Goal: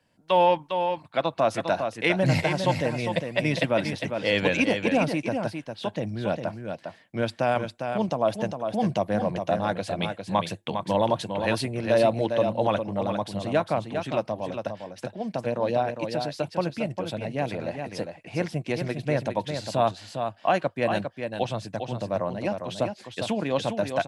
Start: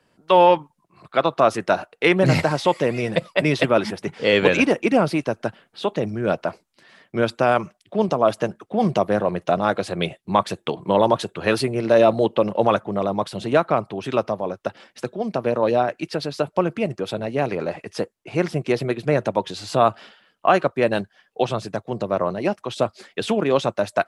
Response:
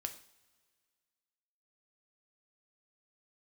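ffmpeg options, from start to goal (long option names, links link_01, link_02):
-filter_complex "[0:a]equalizer=frequency=100:width_type=o:width=0.33:gain=4,equalizer=frequency=400:width_type=o:width=0.33:gain=-10,equalizer=frequency=1250:width_type=o:width=0.33:gain=-9,asplit=2[link_01][link_02];[link_02]aecho=0:1:404:0.473[link_03];[link_01][link_03]amix=inputs=2:normalize=0,volume=-4.5dB"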